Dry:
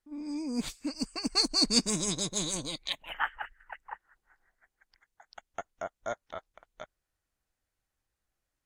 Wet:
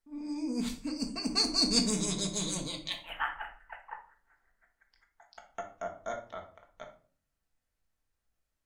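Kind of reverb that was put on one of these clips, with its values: simulated room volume 430 m³, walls furnished, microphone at 1.6 m; trim -3.5 dB

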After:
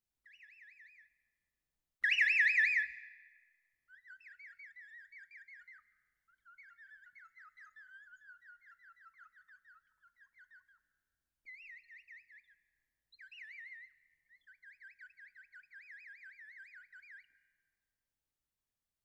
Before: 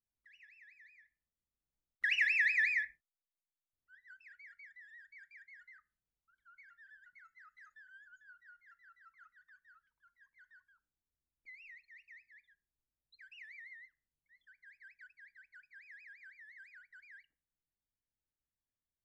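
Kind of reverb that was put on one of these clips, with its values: algorithmic reverb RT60 1.5 s, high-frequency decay 0.75×, pre-delay 105 ms, DRR 17.5 dB; trim +1.5 dB

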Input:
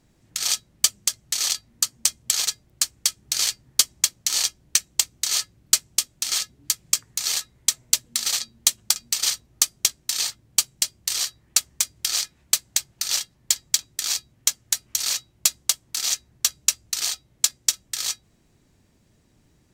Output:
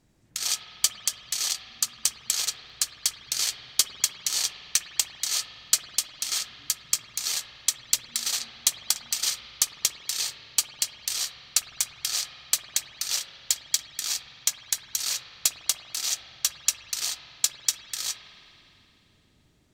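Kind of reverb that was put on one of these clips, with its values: spring tank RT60 3 s, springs 51 ms, chirp 60 ms, DRR 6.5 dB; trim -4 dB

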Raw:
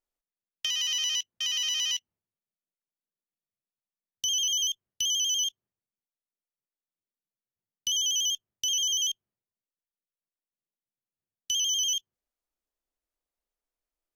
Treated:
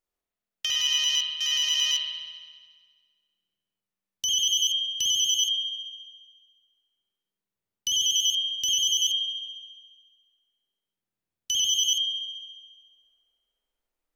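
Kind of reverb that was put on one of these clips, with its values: spring tank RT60 1.6 s, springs 50 ms, chirp 45 ms, DRR -2.5 dB; trim +1.5 dB

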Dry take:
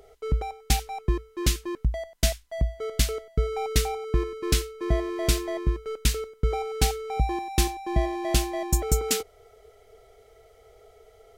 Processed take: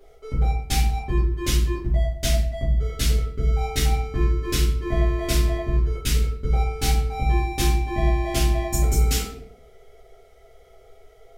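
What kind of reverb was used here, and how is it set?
simulated room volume 81 m³, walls mixed, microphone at 2.4 m; trim -8.5 dB

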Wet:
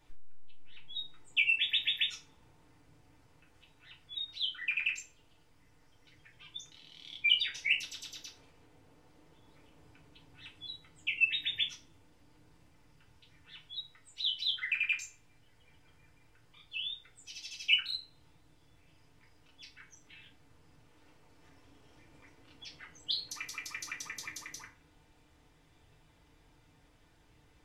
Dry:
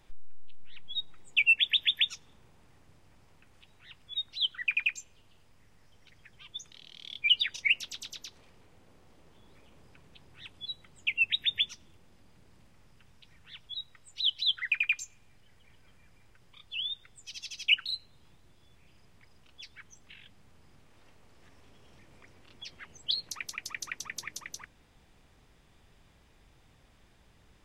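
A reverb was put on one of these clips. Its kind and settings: FDN reverb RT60 0.38 s, low-frequency decay 0.95×, high-frequency decay 0.75×, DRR -2.5 dB; trim -6.5 dB

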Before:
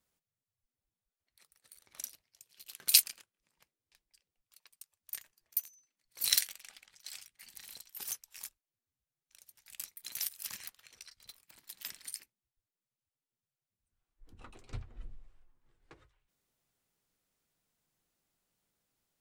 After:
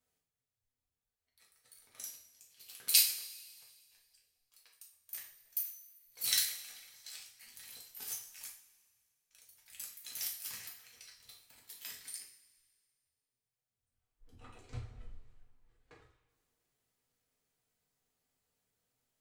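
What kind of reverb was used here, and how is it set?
two-slope reverb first 0.44 s, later 1.9 s, from -18 dB, DRR -3.5 dB; trim -6 dB

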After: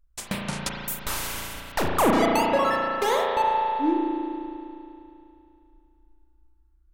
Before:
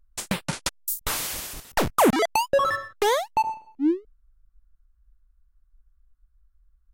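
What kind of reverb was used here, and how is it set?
spring tank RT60 2.8 s, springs 35 ms, chirp 60 ms, DRR -2 dB; trim -3.5 dB

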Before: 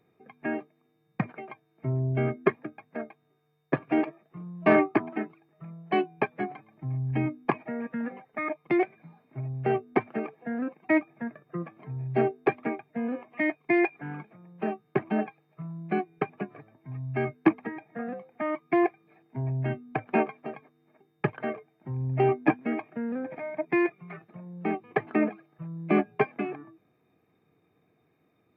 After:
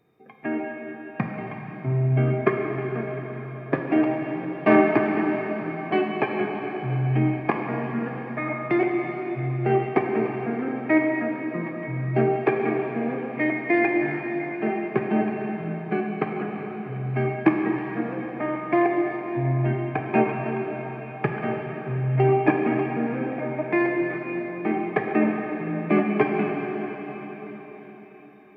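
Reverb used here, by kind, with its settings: plate-style reverb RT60 5 s, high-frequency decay 1×, DRR 0 dB; trim +2 dB

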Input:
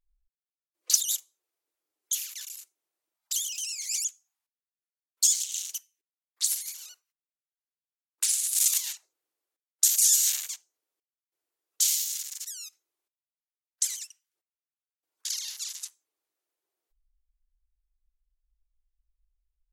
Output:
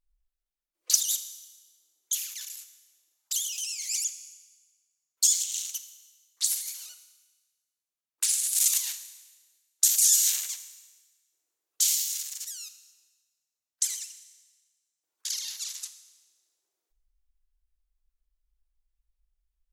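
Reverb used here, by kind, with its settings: Schroeder reverb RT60 1.3 s, combs from 27 ms, DRR 10.5 dB

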